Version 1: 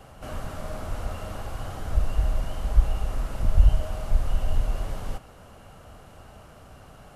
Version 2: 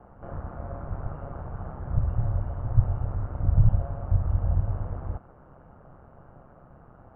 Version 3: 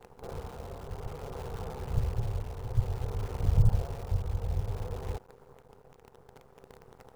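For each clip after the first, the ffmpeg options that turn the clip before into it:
-af "lowpass=f=1.4k:w=0.5412,lowpass=f=1.4k:w=1.3066,aeval=exprs='val(0)*sin(2*PI*66*n/s)':c=same"
-af "acrusher=bits=8:dc=4:mix=0:aa=0.000001,superequalizer=7b=3.55:9b=1.58,tremolo=f=0.56:d=0.39,volume=-3.5dB"

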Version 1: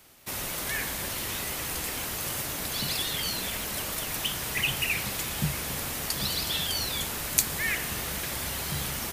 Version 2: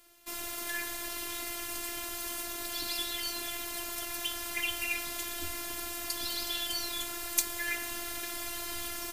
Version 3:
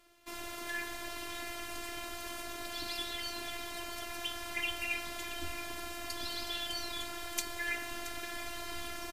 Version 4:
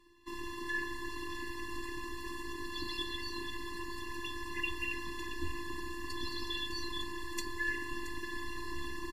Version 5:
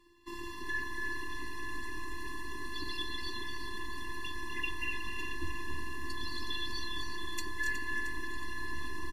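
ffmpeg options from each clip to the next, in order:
-af "afftfilt=real='hypot(re,im)*cos(PI*b)':imag='0':win_size=512:overlap=0.75,volume=-1.5dB"
-af "aemphasis=mode=reproduction:type=50kf,aecho=1:1:675:0.224"
-af "lowpass=f=2.7k:p=1,afftfilt=real='re*eq(mod(floor(b*sr/1024/410),2),0)':imag='im*eq(mod(floor(b*sr/1024/410),2),0)':win_size=1024:overlap=0.75,volume=5dB"
-af "aecho=1:1:251|277|367|592:0.355|0.501|0.335|0.126"

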